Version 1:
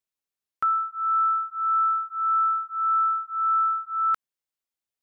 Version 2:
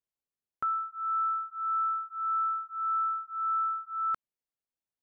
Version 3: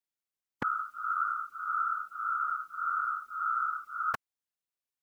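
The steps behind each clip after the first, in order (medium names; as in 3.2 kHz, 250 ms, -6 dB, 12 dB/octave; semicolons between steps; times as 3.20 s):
tilt shelf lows +5.5 dB, about 1.1 kHz; trim -6 dB
spectral peaks clipped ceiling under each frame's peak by 27 dB; whisper effect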